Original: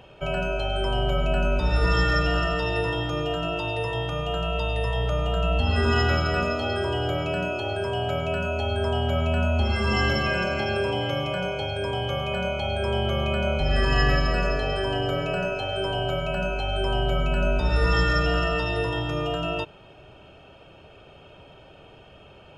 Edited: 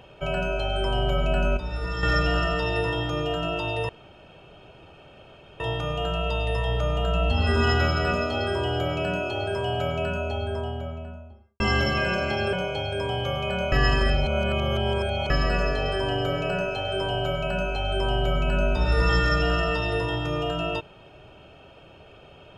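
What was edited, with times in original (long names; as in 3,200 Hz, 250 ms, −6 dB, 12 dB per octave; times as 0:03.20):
0:01.57–0:02.03: clip gain −8.5 dB
0:03.89: splice in room tone 1.71 s
0:08.10–0:09.89: fade out and dull
0:10.82–0:11.37: remove
0:12.56–0:14.14: reverse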